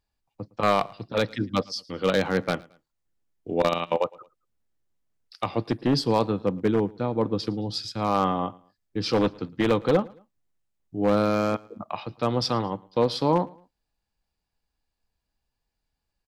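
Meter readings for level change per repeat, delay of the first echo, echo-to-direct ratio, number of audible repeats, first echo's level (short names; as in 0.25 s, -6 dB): -9.0 dB, 0.111 s, -23.5 dB, 2, -24.0 dB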